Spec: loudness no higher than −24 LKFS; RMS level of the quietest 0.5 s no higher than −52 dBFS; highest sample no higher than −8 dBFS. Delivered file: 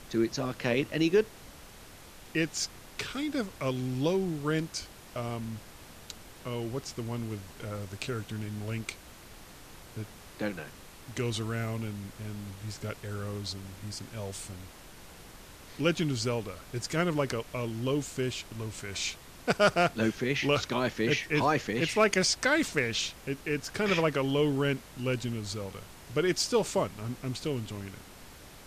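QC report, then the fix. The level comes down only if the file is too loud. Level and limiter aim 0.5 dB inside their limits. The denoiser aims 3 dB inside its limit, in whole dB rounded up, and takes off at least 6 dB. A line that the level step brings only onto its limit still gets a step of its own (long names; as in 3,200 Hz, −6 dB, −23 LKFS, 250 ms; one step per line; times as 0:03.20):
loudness −31.0 LKFS: in spec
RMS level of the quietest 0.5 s −50 dBFS: out of spec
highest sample −11.5 dBFS: in spec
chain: broadband denoise 6 dB, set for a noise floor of −50 dBFS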